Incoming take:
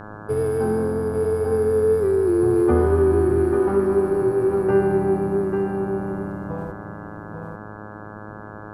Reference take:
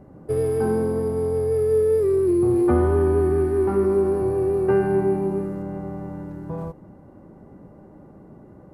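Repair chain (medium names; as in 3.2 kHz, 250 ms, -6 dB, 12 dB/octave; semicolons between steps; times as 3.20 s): de-hum 105.4 Hz, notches 16; expander -29 dBFS, range -21 dB; inverse comb 844 ms -6 dB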